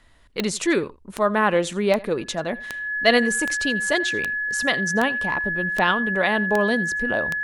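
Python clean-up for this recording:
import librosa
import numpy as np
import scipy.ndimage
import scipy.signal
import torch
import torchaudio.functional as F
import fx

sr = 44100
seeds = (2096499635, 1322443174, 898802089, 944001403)

y = fx.fix_declick_ar(x, sr, threshold=10.0)
y = fx.notch(y, sr, hz=1700.0, q=30.0)
y = fx.fix_echo_inverse(y, sr, delay_ms=85, level_db=-21.5)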